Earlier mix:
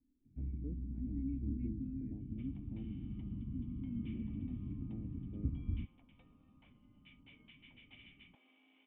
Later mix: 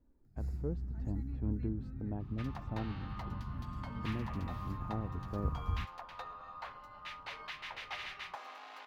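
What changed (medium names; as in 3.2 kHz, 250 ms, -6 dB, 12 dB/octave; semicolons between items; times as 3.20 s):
first sound -10.0 dB; master: remove cascade formant filter i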